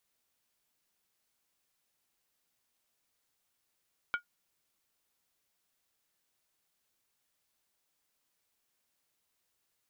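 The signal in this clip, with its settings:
struck skin, lowest mode 1,430 Hz, decay 0.11 s, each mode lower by 8 dB, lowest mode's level −24 dB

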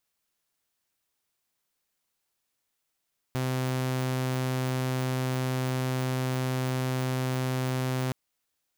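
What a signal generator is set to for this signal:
tone saw 129 Hz −24 dBFS 4.77 s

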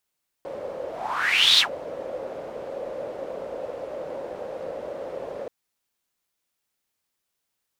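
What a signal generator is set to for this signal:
pass-by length 5.03 s, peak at 0:01.14, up 0.76 s, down 0.11 s, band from 540 Hz, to 3,800 Hz, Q 6.7, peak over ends 17 dB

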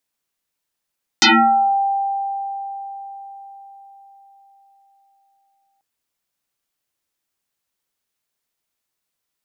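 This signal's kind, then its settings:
two-operator FM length 4.59 s, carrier 790 Hz, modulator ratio 0.71, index 11, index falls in 0.54 s exponential, decay 4.82 s, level −8 dB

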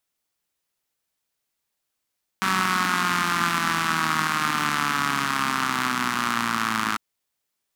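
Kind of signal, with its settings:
pulse-train model of a four-cylinder engine, changing speed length 4.55 s, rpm 5,700, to 3,200, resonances 230/1,200 Hz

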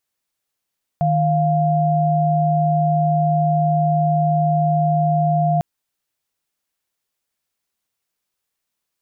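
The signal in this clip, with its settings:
held notes D#3/F5 sine, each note −17 dBFS 4.60 s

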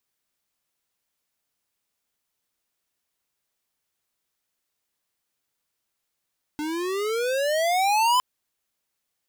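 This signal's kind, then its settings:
pitch glide with a swell square, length 1.61 s, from 296 Hz, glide +21.5 semitones, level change +10 dB, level −19 dB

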